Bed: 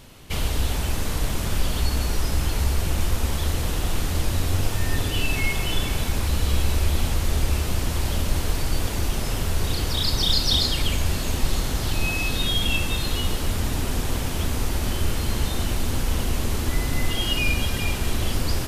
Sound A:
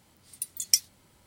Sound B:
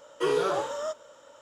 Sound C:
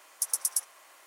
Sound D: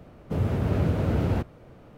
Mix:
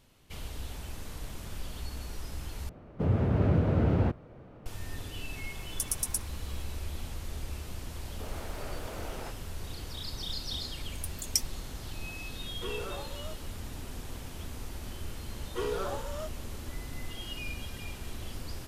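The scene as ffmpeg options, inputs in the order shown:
-filter_complex "[4:a]asplit=2[a][b];[2:a]asplit=2[c][d];[0:a]volume=-16dB[e];[a]lowpass=f=2.3k:p=1[f];[b]highpass=630[g];[1:a]agate=range=-33dB:threshold=-52dB:ratio=3:release=100:detection=peak[h];[e]asplit=2[i][j];[i]atrim=end=2.694[k];[f]atrim=end=1.97,asetpts=PTS-STARTPTS,volume=-1dB[l];[j]atrim=start=4.656[m];[3:a]atrim=end=1.06,asetpts=PTS-STARTPTS,volume=-3.5dB,afade=t=in:d=0.004:c=hsin,afade=t=out:st=1.056:d=0.004:c=hsin,adelay=5580[n];[g]atrim=end=1.97,asetpts=PTS-STARTPTS,volume=-6.5dB,afade=t=in:d=0.004:c=hsin,afade=t=out:st=1.966:d=0.004:c=hsin,adelay=7890[o];[h]atrim=end=1.26,asetpts=PTS-STARTPTS,volume=-6.5dB,afade=t=in:d=0.004:c=hsin,afade=t=out:st=1.256:d=0.004:c=hsin,adelay=10620[p];[c]atrim=end=1.41,asetpts=PTS-STARTPTS,volume=-13.5dB,afade=t=in:d=0.004:c=hsin,afade=t=out:st=1.406:d=0.004:c=hsin,adelay=12410[q];[d]atrim=end=1.41,asetpts=PTS-STARTPTS,volume=-8dB,afade=t=in:d=0.004:c=hsin,afade=t=out:st=1.406:d=0.004:c=hsin,adelay=15350[r];[k][l]acrossfade=d=0.004:c1=hsin:c2=hsin[s];[s][m]acrossfade=d=0.004:c1=hsin:c2=hsin[t];[t][n][o][p][q][r]amix=inputs=6:normalize=0"

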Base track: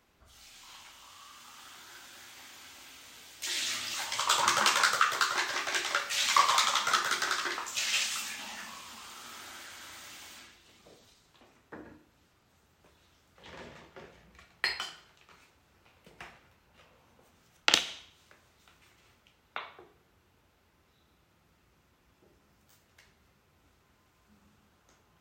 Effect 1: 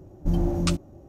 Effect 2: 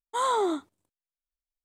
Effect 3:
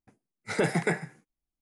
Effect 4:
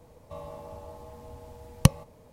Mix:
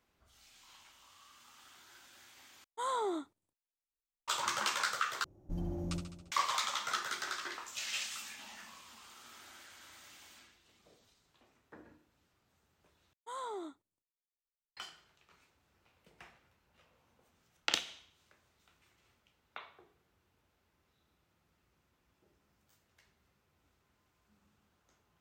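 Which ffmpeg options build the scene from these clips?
-filter_complex "[2:a]asplit=2[a][b];[0:a]volume=-8.5dB[c];[1:a]aecho=1:1:69|138|207|276|345|414|483:0.398|0.235|0.139|0.0818|0.0482|0.0285|0.0168[d];[c]asplit=4[e][f][g][h];[e]atrim=end=2.644[i];[a]atrim=end=1.64,asetpts=PTS-STARTPTS,volume=-9.5dB[j];[f]atrim=start=4.276:end=5.244[k];[d]atrim=end=1.08,asetpts=PTS-STARTPTS,volume=-15.5dB[l];[g]atrim=start=6.316:end=13.134[m];[b]atrim=end=1.64,asetpts=PTS-STARTPTS,volume=-16.5dB[n];[h]atrim=start=14.766[o];[i][j]acrossfade=d=0.004:c1=hsin:c2=hsin[p];[p][k]acrossfade=d=0.004:c1=hsin:c2=hsin[q];[q][l]acrossfade=d=0.004:c1=hsin:c2=hsin[r];[r][m]acrossfade=d=0.004:c1=hsin:c2=hsin[s];[s][n]acrossfade=d=0.004:c1=hsin:c2=hsin[t];[t][o]acrossfade=d=0.004:c1=hsin:c2=hsin"

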